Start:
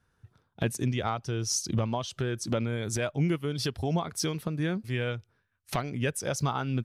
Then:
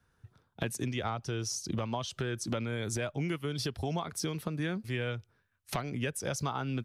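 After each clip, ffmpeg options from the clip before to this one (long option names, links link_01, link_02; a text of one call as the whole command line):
ffmpeg -i in.wav -filter_complex "[0:a]acrossover=split=250|880[link_01][link_02][link_03];[link_01]acompressor=threshold=-36dB:ratio=4[link_04];[link_02]acompressor=threshold=-36dB:ratio=4[link_05];[link_03]acompressor=threshold=-35dB:ratio=4[link_06];[link_04][link_05][link_06]amix=inputs=3:normalize=0" out.wav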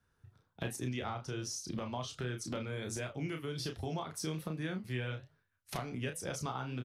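ffmpeg -i in.wav -filter_complex "[0:a]flanger=delay=8.7:depth=7.1:regen=-78:speed=1.3:shape=triangular,asplit=2[link_01][link_02];[link_02]adelay=32,volume=-6dB[link_03];[link_01][link_03]amix=inputs=2:normalize=0,volume=-1dB" out.wav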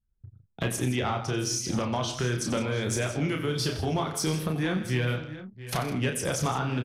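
ffmpeg -i in.wav -af "aeval=exprs='0.0794*sin(PI/2*1.58*val(0)/0.0794)':channel_layout=same,aecho=1:1:91|161|680|706:0.237|0.211|0.158|0.126,anlmdn=0.00398,volume=3dB" out.wav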